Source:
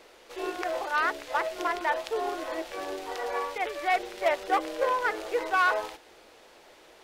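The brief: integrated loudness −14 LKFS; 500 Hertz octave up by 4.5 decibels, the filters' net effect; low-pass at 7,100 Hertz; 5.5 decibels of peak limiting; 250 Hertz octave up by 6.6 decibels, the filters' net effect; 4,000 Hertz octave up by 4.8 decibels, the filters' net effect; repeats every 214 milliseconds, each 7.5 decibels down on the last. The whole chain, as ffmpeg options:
ffmpeg -i in.wav -af "lowpass=7100,equalizer=frequency=250:width_type=o:gain=8.5,equalizer=frequency=500:width_type=o:gain=3.5,equalizer=frequency=4000:width_type=o:gain=6.5,alimiter=limit=-16.5dB:level=0:latency=1,aecho=1:1:214|428|642|856|1070:0.422|0.177|0.0744|0.0312|0.0131,volume=13dB" out.wav

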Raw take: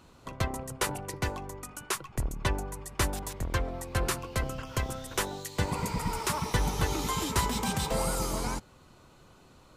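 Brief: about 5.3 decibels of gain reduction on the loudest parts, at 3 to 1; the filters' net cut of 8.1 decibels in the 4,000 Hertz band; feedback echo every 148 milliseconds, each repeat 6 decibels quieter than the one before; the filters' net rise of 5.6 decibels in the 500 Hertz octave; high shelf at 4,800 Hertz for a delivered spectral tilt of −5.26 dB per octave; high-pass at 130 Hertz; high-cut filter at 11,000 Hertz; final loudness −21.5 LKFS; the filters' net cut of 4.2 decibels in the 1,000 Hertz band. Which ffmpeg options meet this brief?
ffmpeg -i in.wav -af "highpass=130,lowpass=11000,equalizer=frequency=500:width_type=o:gain=8.5,equalizer=frequency=1000:width_type=o:gain=-7,equalizer=frequency=4000:width_type=o:gain=-6.5,highshelf=frequency=4800:gain=-7.5,acompressor=threshold=-32dB:ratio=3,aecho=1:1:148|296|444|592|740|888:0.501|0.251|0.125|0.0626|0.0313|0.0157,volume=14.5dB" out.wav

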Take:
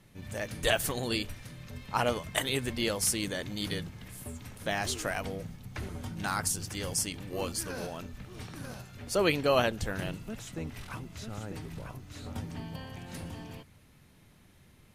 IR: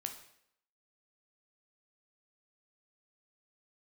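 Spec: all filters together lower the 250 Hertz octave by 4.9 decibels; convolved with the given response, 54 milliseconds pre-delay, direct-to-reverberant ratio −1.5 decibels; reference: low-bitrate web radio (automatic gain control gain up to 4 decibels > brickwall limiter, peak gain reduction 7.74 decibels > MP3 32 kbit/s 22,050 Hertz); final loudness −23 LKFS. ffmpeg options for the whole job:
-filter_complex "[0:a]equalizer=frequency=250:width_type=o:gain=-7,asplit=2[link_01][link_02];[1:a]atrim=start_sample=2205,adelay=54[link_03];[link_02][link_03]afir=irnorm=-1:irlink=0,volume=3dB[link_04];[link_01][link_04]amix=inputs=2:normalize=0,dynaudnorm=maxgain=4dB,alimiter=limit=-19dB:level=0:latency=1,volume=10.5dB" -ar 22050 -c:a libmp3lame -b:a 32k

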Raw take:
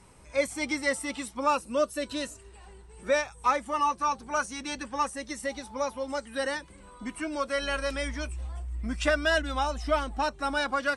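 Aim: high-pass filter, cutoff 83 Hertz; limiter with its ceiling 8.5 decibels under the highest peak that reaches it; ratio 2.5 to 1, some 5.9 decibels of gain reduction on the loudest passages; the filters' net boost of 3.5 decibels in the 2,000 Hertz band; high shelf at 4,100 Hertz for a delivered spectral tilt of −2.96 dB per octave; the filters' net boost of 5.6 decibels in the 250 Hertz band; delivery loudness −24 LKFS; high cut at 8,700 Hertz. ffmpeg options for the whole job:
ffmpeg -i in.wav -af "highpass=83,lowpass=8700,equalizer=frequency=250:width_type=o:gain=6.5,equalizer=frequency=2000:width_type=o:gain=6,highshelf=frequency=4100:gain=-8,acompressor=threshold=-27dB:ratio=2.5,volume=10.5dB,alimiter=limit=-14.5dB:level=0:latency=1" out.wav

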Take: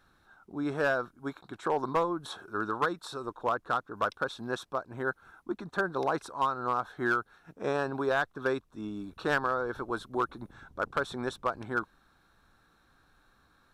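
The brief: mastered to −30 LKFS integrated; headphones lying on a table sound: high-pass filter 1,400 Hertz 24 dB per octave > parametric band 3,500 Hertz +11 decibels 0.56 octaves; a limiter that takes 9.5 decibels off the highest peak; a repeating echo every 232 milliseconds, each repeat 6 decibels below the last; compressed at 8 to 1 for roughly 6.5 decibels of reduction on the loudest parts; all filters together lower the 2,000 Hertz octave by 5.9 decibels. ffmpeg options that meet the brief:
ffmpeg -i in.wav -af "equalizer=frequency=2000:width_type=o:gain=-7.5,acompressor=threshold=-31dB:ratio=8,alimiter=level_in=6dB:limit=-24dB:level=0:latency=1,volume=-6dB,highpass=frequency=1400:width=0.5412,highpass=frequency=1400:width=1.3066,equalizer=frequency=3500:width_type=o:width=0.56:gain=11,aecho=1:1:232|464|696|928|1160|1392:0.501|0.251|0.125|0.0626|0.0313|0.0157,volume=14.5dB" out.wav

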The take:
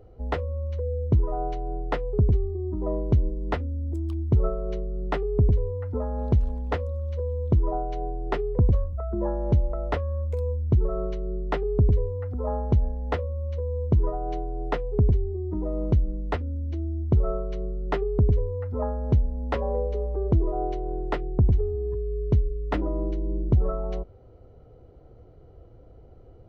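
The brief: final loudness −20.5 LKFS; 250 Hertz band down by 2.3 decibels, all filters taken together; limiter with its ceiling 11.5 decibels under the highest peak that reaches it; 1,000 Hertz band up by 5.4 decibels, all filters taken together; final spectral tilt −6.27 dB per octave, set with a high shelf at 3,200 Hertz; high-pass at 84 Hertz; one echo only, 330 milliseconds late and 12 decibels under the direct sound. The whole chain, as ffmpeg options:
ffmpeg -i in.wav -af "highpass=84,equalizer=frequency=250:width_type=o:gain=-4,equalizer=frequency=1000:width_type=o:gain=7,highshelf=frequency=3200:gain=8.5,alimiter=limit=-20.5dB:level=0:latency=1,aecho=1:1:330:0.251,volume=11dB" out.wav

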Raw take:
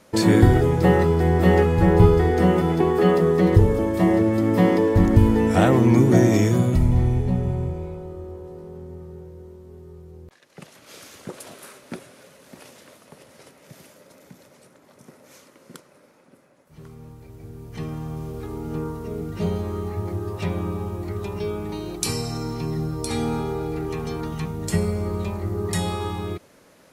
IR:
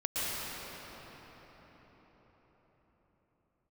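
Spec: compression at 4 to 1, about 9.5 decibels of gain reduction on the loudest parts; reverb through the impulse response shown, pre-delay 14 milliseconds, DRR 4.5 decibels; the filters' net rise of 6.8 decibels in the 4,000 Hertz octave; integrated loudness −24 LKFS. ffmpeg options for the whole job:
-filter_complex "[0:a]equalizer=frequency=4000:width_type=o:gain=8.5,acompressor=threshold=-20dB:ratio=4,asplit=2[link_01][link_02];[1:a]atrim=start_sample=2205,adelay=14[link_03];[link_02][link_03]afir=irnorm=-1:irlink=0,volume=-13dB[link_04];[link_01][link_04]amix=inputs=2:normalize=0,volume=0.5dB"

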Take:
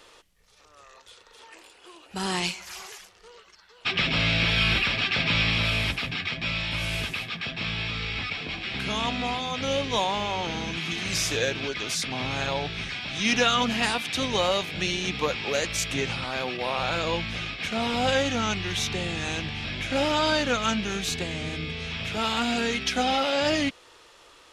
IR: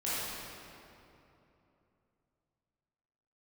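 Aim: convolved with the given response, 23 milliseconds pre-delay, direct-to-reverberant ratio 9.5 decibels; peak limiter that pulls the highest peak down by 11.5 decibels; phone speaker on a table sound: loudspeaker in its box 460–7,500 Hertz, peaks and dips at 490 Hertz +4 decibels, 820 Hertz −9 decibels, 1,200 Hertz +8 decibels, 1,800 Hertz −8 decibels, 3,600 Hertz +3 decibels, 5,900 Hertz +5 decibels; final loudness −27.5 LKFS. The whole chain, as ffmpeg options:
-filter_complex "[0:a]alimiter=limit=-20dB:level=0:latency=1,asplit=2[link_01][link_02];[1:a]atrim=start_sample=2205,adelay=23[link_03];[link_02][link_03]afir=irnorm=-1:irlink=0,volume=-17dB[link_04];[link_01][link_04]amix=inputs=2:normalize=0,highpass=frequency=460:width=0.5412,highpass=frequency=460:width=1.3066,equalizer=frequency=490:width_type=q:width=4:gain=4,equalizer=frequency=820:width_type=q:width=4:gain=-9,equalizer=frequency=1200:width_type=q:width=4:gain=8,equalizer=frequency=1800:width_type=q:width=4:gain=-8,equalizer=frequency=3600:width_type=q:width=4:gain=3,equalizer=frequency=5900:width_type=q:width=4:gain=5,lowpass=frequency=7500:width=0.5412,lowpass=frequency=7500:width=1.3066,volume=1.5dB"

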